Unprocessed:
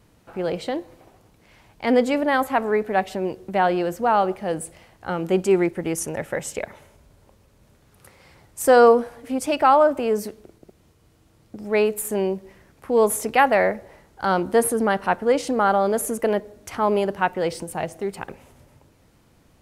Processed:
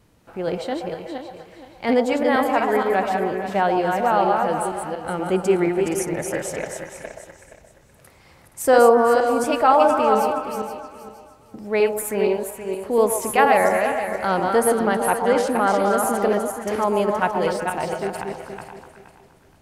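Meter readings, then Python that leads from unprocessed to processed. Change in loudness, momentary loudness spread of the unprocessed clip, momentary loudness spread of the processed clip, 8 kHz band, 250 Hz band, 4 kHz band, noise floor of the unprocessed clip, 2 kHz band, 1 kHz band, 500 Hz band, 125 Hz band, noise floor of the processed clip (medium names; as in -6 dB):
+1.0 dB, 14 LU, 16 LU, +1.0 dB, +1.0 dB, +1.0 dB, -58 dBFS, +1.5 dB, +2.5 dB, +1.5 dB, +0.5 dB, -52 dBFS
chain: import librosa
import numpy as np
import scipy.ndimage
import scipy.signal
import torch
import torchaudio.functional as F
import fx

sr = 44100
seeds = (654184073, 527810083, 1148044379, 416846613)

y = fx.reverse_delay_fb(x, sr, ms=236, feedback_pct=50, wet_db=-4.0)
y = fx.echo_stepped(y, sr, ms=125, hz=730.0, octaves=0.7, feedback_pct=70, wet_db=-4.0)
y = F.gain(torch.from_numpy(y), -1.0).numpy()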